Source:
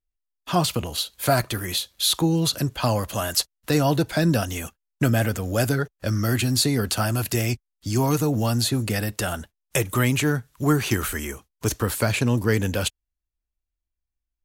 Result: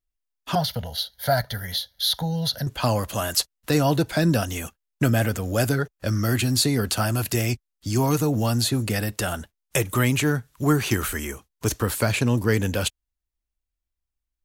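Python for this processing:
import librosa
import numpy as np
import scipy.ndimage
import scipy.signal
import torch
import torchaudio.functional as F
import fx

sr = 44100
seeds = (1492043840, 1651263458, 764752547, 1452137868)

y = fx.fixed_phaser(x, sr, hz=1700.0, stages=8, at=(0.55, 2.67))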